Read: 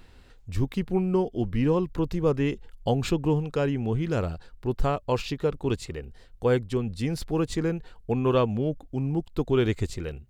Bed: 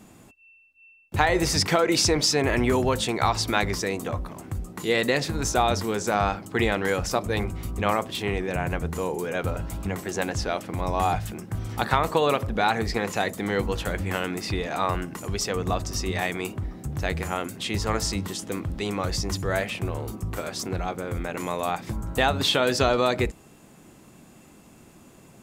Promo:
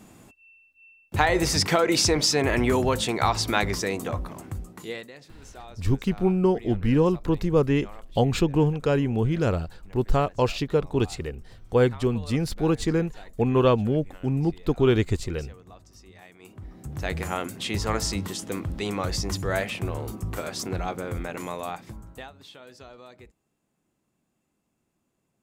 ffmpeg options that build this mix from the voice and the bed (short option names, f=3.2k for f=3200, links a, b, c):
-filter_complex "[0:a]adelay=5300,volume=3dB[a];[1:a]volume=22dB,afade=t=out:st=4.35:d=0.73:silence=0.0749894,afade=t=in:st=16.39:d=0.85:silence=0.0794328,afade=t=out:st=21.04:d=1.27:silence=0.0595662[b];[a][b]amix=inputs=2:normalize=0"